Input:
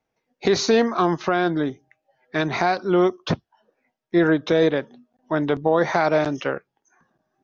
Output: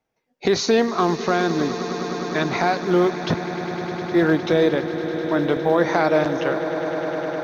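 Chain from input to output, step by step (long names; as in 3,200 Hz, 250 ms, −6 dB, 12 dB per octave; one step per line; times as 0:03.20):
floating-point word with a short mantissa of 6 bits
on a send: echo that builds up and dies away 102 ms, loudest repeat 8, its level −16 dB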